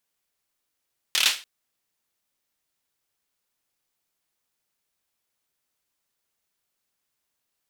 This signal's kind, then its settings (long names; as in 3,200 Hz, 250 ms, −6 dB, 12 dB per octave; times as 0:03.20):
synth clap length 0.29 s, bursts 5, apart 27 ms, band 3,100 Hz, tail 0.31 s